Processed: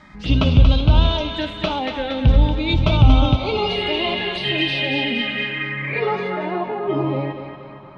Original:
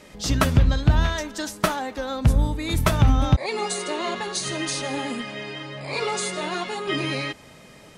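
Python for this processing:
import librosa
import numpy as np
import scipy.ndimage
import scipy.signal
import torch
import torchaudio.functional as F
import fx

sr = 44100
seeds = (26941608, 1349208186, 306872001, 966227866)

y = fx.env_phaser(x, sr, low_hz=450.0, high_hz=1800.0, full_db=-21.5)
y = fx.hpss(y, sr, part='harmonic', gain_db=8)
y = fx.echo_thinned(y, sr, ms=233, feedback_pct=58, hz=520.0, wet_db=-6.0)
y = fx.rev_freeverb(y, sr, rt60_s=4.1, hf_ratio=0.8, predelay_ms=10, drr_db=16.5)
y = fx.filter_sweep_lowpass(y, sr, from_hz=2900.0, to_hz=1000.0, start_s=5.41, end_s=6.8, q=2.6)
y = y * librosa.db_to_amplitude(-1.0)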